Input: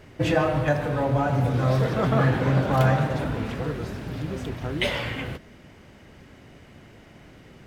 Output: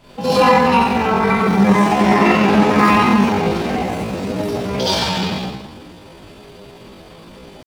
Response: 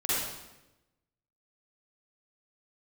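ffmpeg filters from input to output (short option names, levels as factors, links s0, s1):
-filter_complex "[1:a]atrim=start_sample=2205,asetrate=37044,aresample=44100[s0];[0:a][s0]afir=irnorm=-1:irlink=0,asetrate=70004,aresample=44100,atempo=0.629961,volume=0.794"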